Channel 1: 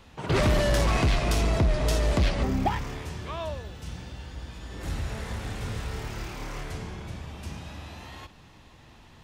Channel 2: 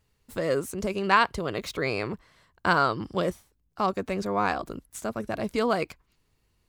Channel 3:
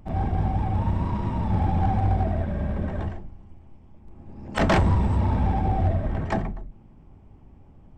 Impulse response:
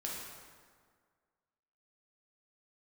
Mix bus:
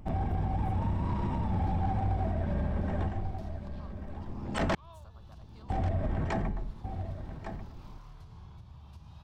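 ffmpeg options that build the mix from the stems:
-filter_complex "[0:a]lowshelf=f=360:g=10,acompressor=threshold=-34dB:ratio=2,adelay=1500,volume=-14.5dB[a];[1:a]acompressor=threshold=-32dB:ratio=6,volume=-20dB[b];[2:a]bandreject=f=105.3:t=h:w=4,bandreject=f=210.6:t=h:w=4,bandreject=f=315.9:t=h:w=4,bandreject=f=421.2:t=h:w=4,bandreject=f=526.5:t=h:w=4,bandreject=f=631.8:t=h:w=4,bandreject=f=737.1:t=h:w=4,bandreject=f=842.4:t=h:w=4,bandreject=f=947.7:t=h:w=4,bandreject=f=1.053k:t=h:w=4,bandreject=f=1.1583k:t=h:w=4,bandreject=f=1.2636k:t=h:w=4,bandreject=f=1.3689k:t=h:w=4,bandreject=f=1.4742k:t=h:w=4,bandreject=f=1.5795k:t=h:w=4,bandreject=f=1.6848k:t=h:w=4,bandreject=f=1.7901k:t=h:w=4,bandreject=f=1.8954k:t=h:w=4,bandreject=f=2.0007k:t=h:w=4,bandreject=f=2.106k:t=h:w=4,bandreject=f=2.2113k:t=h:w=4,bandreject=f=2.3166k:t=h:w=4,bandreject=f=2.4219k:t=h:w=4,bandreject=f=2.5272k:t=h:w=4,bandreject=f=2.6325k:t=h:w=4,bandreject=f=2.7378k:t=h:w=4,bandreject=f=2.8431k:t=h:w=4,bandreject=f=2.9484k:t=h:w=4,volume=1dB,asplit=3[c][d][e];[c]atrim=end=4.75,asetpts=PTS-STARTPTS,afade=t=out:st=4.746:d=0.004:c=hsin[f];[d]atrim=start=4.75:end=5.7,asetpts=PTS-STARTPTS,volume=0[g];[e]atrim=start=5.7,asetpts=PTS-STARTPTS,afade=t=in:d=0.004:c=hsin[h];[f][g][h]concat=n=3:v=0:a=1,asplit=2[i][j];[j]volume=-16dB[k];[a][b]amix=inputs=2:normalize=0,equalizer=f=125:t=o:w=1:g=4,equalizer=f=250:t=o:w=1:g=-9,equalizer=f=500:t=o:w=1:g=-7,equalizer=f=1k:t=o:w=1:g=10,equalizer=f=2k:t=o:w=1:g=-9,equalizer=f=4k:t=o:w=1:g=6,equalizer=f=8k:t=o:w=1:g=-7,alimiter=level_in=17dB:limit=-24dB:level=0:latency=1:release=128,volume=-17dB,volume=0dB[l];[k]aecho=0:1:1141:1[m];[i][l][m]amix=inputs=3:normalize=0,alimiter=limit=-22.5dB:level=0:latency=1:release=139"

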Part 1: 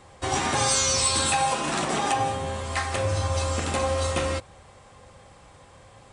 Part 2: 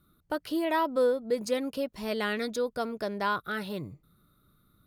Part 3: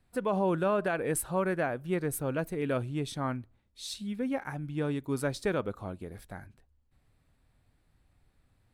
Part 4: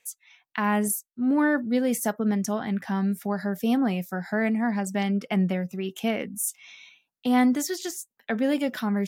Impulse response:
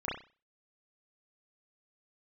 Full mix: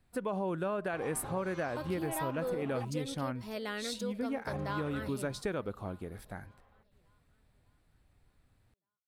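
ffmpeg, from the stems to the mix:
-filter_complex "[0:a]lowpass=1.8k,acrossover=split=690[a][b];[a]aeval=exprs='val(0)*(1-0.7/2+0.7/2*cos(2*PI*1.6*n/s))':c=same[c];[b]aeval=exprs='val(0)*(1-0.7/2-0.7/2*cos(2*PI*1.6*n/s))':c=same[d];[c][d]amix=inputs=2:normalize=0,adelay=700,volume=-12.5dB,asplit=3[e][f][g];[e]atrim=end=2.85,asetpts=PTS-STARTPTS,afade=t=out:st=2.846:d=0.004:c=hsin[h];[f]atrim=start=2.85:end=4.47,asetpts=PTS-STARTPTS,volume=0[i];[g]atrim=start=4.47,asetpts=PTS-STARTPTS,afade=t=in:d=0.004:c=hsin[j];[h][i][j]concat=n=3:v=0:a=1[k];[1:a]adelay=1450,volume=-7.5dB,asplit=2[l][m];[m]volume=-21.5dB[n];[2:a]volume=-0.5dB[o];[n]aecho=0:1:594|1188|1782|2376|2970|3564|4158:1|0.49|0.24|0.118|0.0576|0.0282|0.0138[p];[k][l][o][p]amix=inputs=4:normalize=0,acompressor=threshold=-32dB:ratio=3"

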